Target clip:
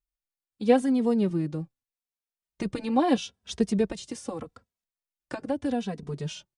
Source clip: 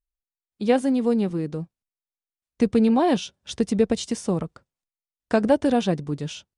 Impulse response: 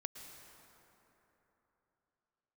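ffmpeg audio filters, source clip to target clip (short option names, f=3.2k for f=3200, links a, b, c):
-filter_complex "[0:a]asettb=1/sr,asplit=3[a][b][c];[a]atrim=end=3.904[d];[b]atrim=start=3.9:end=6.03,asetpts=PTS-STARTPTS,afade=t=in:d=0.004:c=qsin,afade=t=out:st=2.126:d=0.004:c=qsin,acrossover=split=270|770[e][f][g];[e]acompressor=threshold=-30dB:ratio=4[h];[f]acompressor=threshold=-32dB:ratio=4[i];[g]acompressor=threshold=-37dB:ratio=4[j];[h][i][j]amix=inputs=3:normalize=0[k];[c]atrim=start=6.026[l];[d][k]acrossfade=d=0.004:c1=hsin:c2=qsin[m];[m][l]acrossfade=d=0.004:c1=qsin:c2=hsin,asplit=2[n][o];[o]adelay=2.8,afreqshift=-0.79[p];[n][p]amix=inputs=2:normalize=1"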